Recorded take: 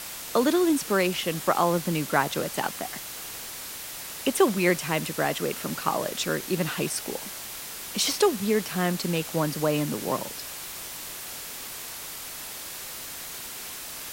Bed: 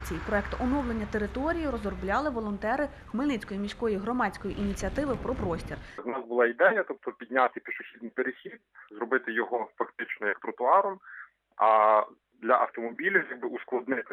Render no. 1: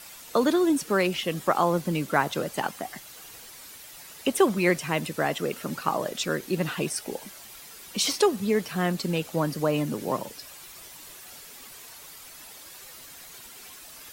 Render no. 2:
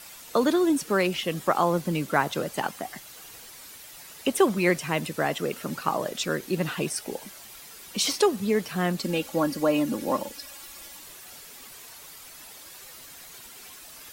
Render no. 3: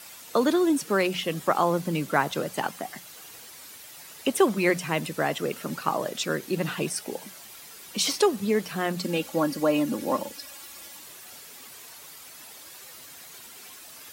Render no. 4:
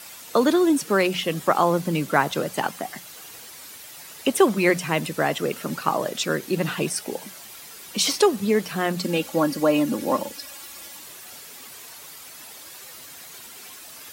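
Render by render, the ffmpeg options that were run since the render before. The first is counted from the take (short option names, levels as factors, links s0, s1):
-af "afftdn=nr=10:nf=-38"
-filter_complex "[0:a]asettb=1/sr,asplit=3[s0][s1][s2];[s0]atrim=end=9.044[s3];[s1]atrim=start=9.04:end=10.99,asetpts=PTS-STARTPTS,afade=t=in:d=0.004:c=qsin,afade=t=out:st=1.946:d=0.004:c=qsin,aecho=1:1:3.6:0.65,atrim=end_sample=85995[s4];[s2]atrim=start=10.986[s5];[s3][s4]acrossfade=d=0.004:c1=hsin:c2=qsin[s6];[s6][s5]acrossfade=d=0.004:c1=qsin:c2=hsin"
-af "highpass=80,bandreject=f=60:t=h:w=6,bandreject=f=120:t=h:w=6,bandreject=f=180:t=h:w=6"
-af "volume=1.5"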